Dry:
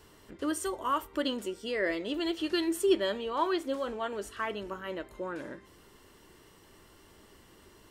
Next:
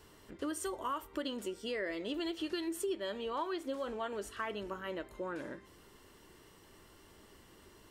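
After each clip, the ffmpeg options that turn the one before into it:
-af "acompressor=threshold=-32dB:ratio=5,volume=-2dB"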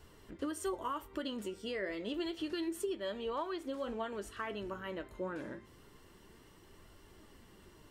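-af "bass=f=250:g=5,treble=f=4k:g=-2,flanger=delay=1.3:depth=9.8:regen=69:speed=0.29:shape=triangular,volume=3dB"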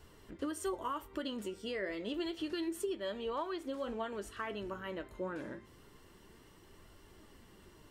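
-af anull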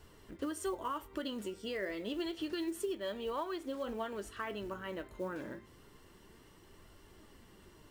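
-af "acrusher=bits=7:mode=log:mix=0:aa=0.000001"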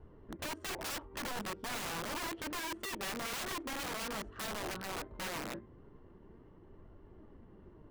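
-af "adynamicsmooth=sensitivity=7:basefreq=840,aeval=exprs='(mod(84.1*val(0)+1,2)-1)/84.1':c=same,volume=4dB"

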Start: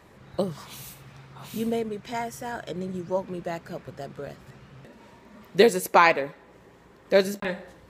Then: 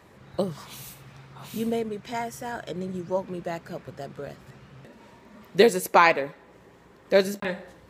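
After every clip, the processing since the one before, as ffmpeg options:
-af "highpass=49"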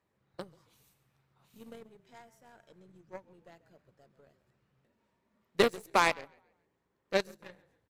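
-filter_complex "[0:a]asplit=5[a][b][c][d][e];[b]adelay=137,afreqshift=-35,volume=-14.5dB[f];[c]adelay=274,afreqshift=-70,volume=-22.2dB[g];[d]adelay=411,afreqshift=-105,volume=-30dB[h];[e]adelay=548,afreqshift=-140,volume=-37.7dB[i];[a][f][g][h][i]amix=inputs=5:normalize=0,aeval=exprs='0.708*(cos(1*acos(clip(val(0)/0.708,-1,1)))-cos(1*PI/2))+0.0891*(cos(7*acos(clip(val(0)/0.708,-1,1)))-cos(7*PI/2))+0.0158*(cos(8*acos(clip(val(0)/0.708,-1,1)))-cos(8*PI/2))':c=same,volume=-7.5dB"

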